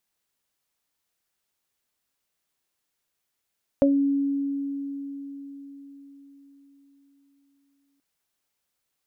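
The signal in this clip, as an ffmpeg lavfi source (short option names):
-f lavfi -i "aevalsrc='0.15*pow(10,-3*t/4.79)*sin(2*PI*279*t)+0.237*pow(10,-3*t/0.2)*sin(2*PI*558*t)':d=4.18:s=44100"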